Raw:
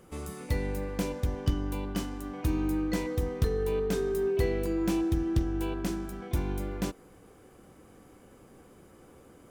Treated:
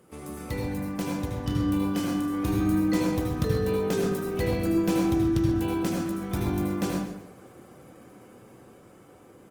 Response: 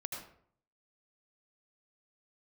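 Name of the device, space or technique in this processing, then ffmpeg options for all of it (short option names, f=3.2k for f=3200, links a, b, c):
far-field microphone of a smart speaker: -filter_complex "[0:a]asplit=3[a][b][c];[a]afade=t=out:st=1.49:d=0.02[d];[b]asplit=2[e][f];[f]adelay=30,volume=-6dB[g];[e][g]amix=inputs=2:normalize=0,afade=t=in:st=1.49:d=0.02,afade=t=out:st=2.8:d=0.02[h];[c]afade=t=in:st=2.8:d=0.02[i];[d][h][i]amix=inputs=3:normalize=0,aecho=1:1:132|264|396:0.266|0.0692|0.018[j];[1:a]atrim=start_sample=2205[k];[j][k]afir=irnorm=-1:irlink=0,highpass=96,dynaudnorm=f=390:g=11:m=3.5dB,volume=2.5dB" -ar 48000 -c:a libopus -b:a 24k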